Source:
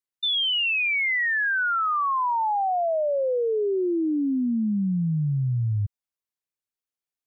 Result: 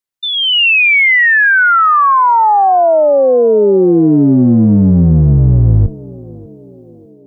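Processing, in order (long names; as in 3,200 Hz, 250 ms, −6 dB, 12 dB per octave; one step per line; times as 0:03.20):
sub-octave generator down 1 octave, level −5 dB
automatic gain control gain up to 10 dB
feedback echo with a band-pass in the loop 597 ms, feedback 64%, band-pass 420 Hz, level −16.5 dB
level +5 dB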